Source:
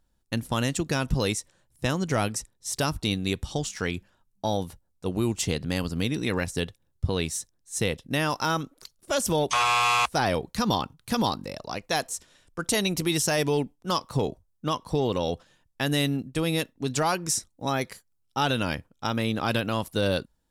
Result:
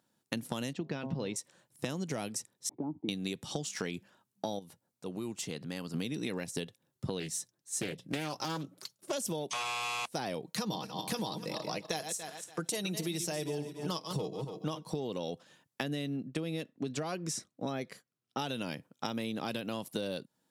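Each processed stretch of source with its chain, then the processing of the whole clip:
0.73–1.36 air absorption 260 m + de-hum 133.9 Hz, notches 8
2.69–3.09 vocal tract filter u + three-band squash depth 40%
4.59–5.94 compressor 1.5:1, threshold -57 dBFS + hard clip -28.5 dBFS
7.2–9.13 notches 60/120/180 Hz + notch comb 240 Hz + Doppler distortion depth 0.5 ms
10.44–14.92 regenerating reverse delay 0.143 s, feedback 40%, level -10 dB + notch 260 Hz, Q 5.9 + comb 6.4 ms, depth 38%
15.83–18.39 LPF 2600 Hz 6 dB/oct + notch 880 Hz, Q 5.5
whole clip: HPF 140 Hz 24 dB/oct; dynamic EQ 1300 Hz, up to -7 dB, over -42 dBFS, Q 1.1; compressor 12:1, threshold -34 dBFS; gain +2 dB

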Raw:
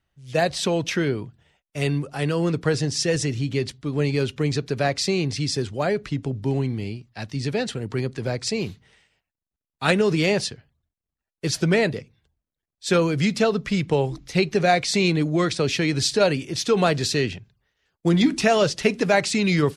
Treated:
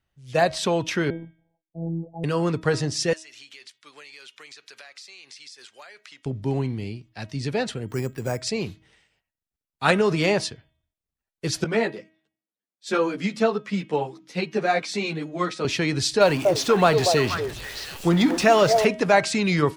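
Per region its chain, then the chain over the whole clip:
1.1–2.24 rippled Chebyshev low-pass 880 Hz, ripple 3 dB + robotiser 166 Hz
3.13–6.26 HPF 1400 Hz + compressor 12:1, threshold -38 dBFS
7.88–8.42 air absorption 57 m + careless resampling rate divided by 6×, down filtered, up hold
11.64–15.65 HPF 170 Hz 24 dB/oct + high shelf 4500 Hz -5 dB + ensemble effect
16.21–18.85 zero-crossing step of -30.5 dBFS + delay with a stepping band-pass 0.239 s, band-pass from 560 Hz, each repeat 1.4 oct, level -2 dB
whole clip: de-hum 317.9 Hz, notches 11; dynamic EQ 1000 Hz, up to +7 dB, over -35 dBFS, Q 1; gain -2 dB

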